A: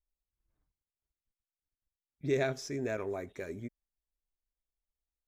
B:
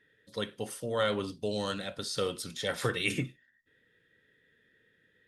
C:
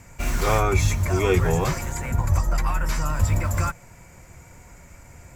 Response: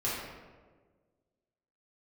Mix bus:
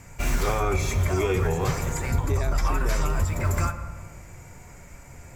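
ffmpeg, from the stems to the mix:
-filter_complex "[0:a]volume=2.5dB[link_01];[1:a]volume=-13dB[link_02];[2:a]volume=-1dB,asplit=2[link_03][link_04];[link_04]volume=-13dB[link_05];[3:a]atrim=start_sample=2205[link_06];[link_05][link_06]afir=irnorm=-1:irlink=0[link_07];[link_01][link_02][link_03][link_07]amix=inputs=4:normalize=0,alimiter=limit=-14dB:level=0:latency=1:release=341"

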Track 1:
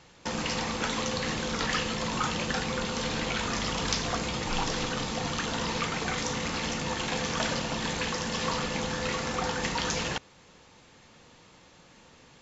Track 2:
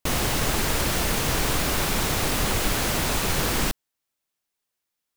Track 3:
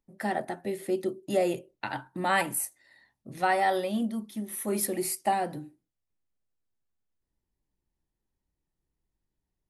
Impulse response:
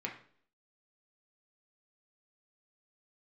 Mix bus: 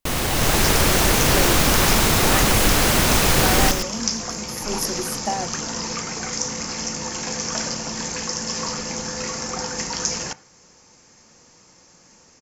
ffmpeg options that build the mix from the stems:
-filter_complex "[0:a]highshelf=frequency=4500:width_type=q:width=3:gain=7,adelay=150,volume=-8dB,asplit=2[link_01][link_02];[link_02]volume=-11dB[link_03];[1:a]volume=0.5dB,asplit=2[link_04][link_05];[link_05]volume=-8dB[link_06];[2:a]volume=-7dB[link_07];[3:a]atrim=start_sample=2205[link_08];[link_03][link_08]afir=irnorm=-1:irlink=0[link_09];[link_06]aecho=0:1:113:1[link_10];[link_01][link_04][link_07][link_09][link_10]amix=inputs=5:normalize=0,dynaudnorm=framelen=280:gausssize=3:maxgain=7dB"

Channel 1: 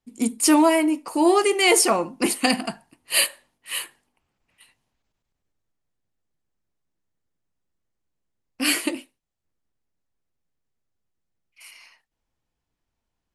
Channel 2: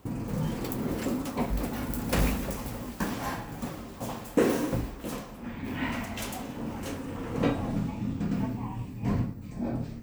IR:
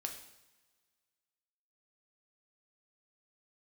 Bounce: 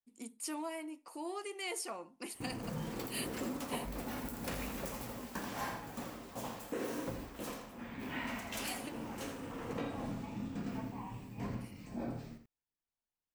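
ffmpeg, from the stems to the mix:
-filter_complex "[0:a]acompressor=threshold=-33dB:ratio=1.5,volume=-15.5dB[link_01];[1:a]alimiter=limit=-21.5dB:level=0:latency=1:release=206,adelay=2350,volume=-5dB,asplit=2[link_02][link_03];[link_03]volume=-8.5dB,aecho=0:1:82:1[link_04];[link_01][link_02][link_04]amix=inputs=3:normalize=0,lowshelf=frequency=230:gain=-8.5"

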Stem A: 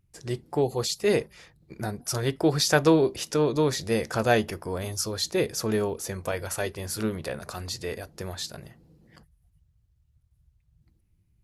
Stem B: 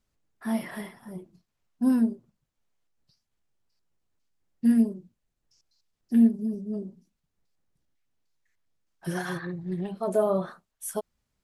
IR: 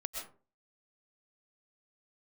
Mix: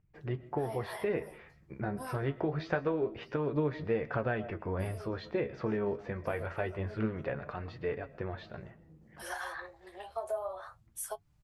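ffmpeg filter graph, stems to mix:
-filter_complex "[0:a]lowpass=frequency=2400:width=0.5412,lowpass=frequency=2400:width=1.3066,acompressor=threshold=-26dB:ratio=6,volume=0.5dB,asplit=3[link_01][link_02][link_03];[link_02]volume=-13dB[link_04];[1:a]highpass=frequency=560:width=0.5412,highpass=frequency=560:width=1.3066,adynamicequalizer=threshold=0.00631:dfrequency=830:dqfactor=0.83:tfrequency=830:tqfactor=0.83:attack=5:release=100:ratio=0.375:range=3:mode=boostabove:tftype=bell,acompressor=threshold=-34dB:ratio=5,adelay=150,volume=2.5dB[link_05];[link_03]apad=whole_len=510882[link_06];[link_05][link_06]sidechaincompress=threshold=-40dB:ratio=3:attack=16:release=113[link_07];[2:a]atrim=start_sample=2205[link_08];[link_04][link_08]afir=irnorm=-1:irlink=0[link_09];[link_01][link_07][link_09]amix=inputs=3:normalize=0,flanger=delay=6.5:depth=8.4:regen=51:speed=0.26:shape=sinusoidal"

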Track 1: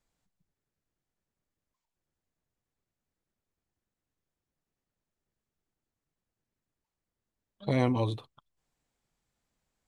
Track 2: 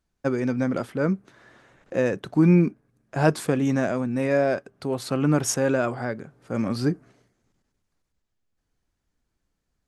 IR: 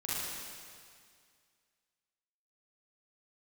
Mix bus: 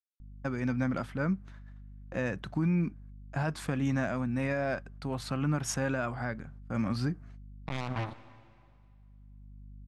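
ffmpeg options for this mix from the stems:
-filter_complex "[0:a]afwtdn=0.00891,alimiter=level_in=0.5dB:limit=-24dB:level=0:latency=1:release=234,volume=-0.5dB,acrusher=bits=4:mix=0:aa=0.5,volume=3dB,asplit=3[link_01][link_02][link_03];[link_02]volume=-18dB[link_04];[1:a]agate=range=-25dB:threshold=-50dB:ratio=16:detection=peak,highshelf=frequency=5200:gain=-11,aeval=exprs='val(0)+0.00562*(sin(2*PI*50*n/s)+sin(2*PI*2*50*n/s)/2+sin(2*PI*3*50*n/s)/3+sin(2*PI*4*50*n/s)/4+sin(2*PI*5*50*n/s)/5)':channel_layout=same,adelay=200,volume=-1dB[link_05];[link_03]apad=whole_len=444261[link_06];[link_05][link_06]sidechaincompress=threshold=-48dB:ratio=8:attack=16:release=999[link_07];[2:a]atrim=start_sample=2205[link_08];[link_04][link_08]afir=irnorm=-1:irlink=0[link_09];[link_01][link_07][link_09]amix=inputs=3:normalize=0,equalizer=frequency=420:width_type=o:width=1.2:gain=-12,alimiter=limit=-21dB:level=0:latency=1:release=173"

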